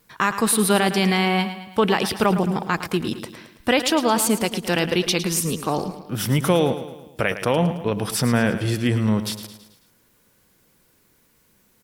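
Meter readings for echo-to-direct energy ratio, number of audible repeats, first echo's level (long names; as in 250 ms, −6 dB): −10.5 dB, 4, −11.5 dB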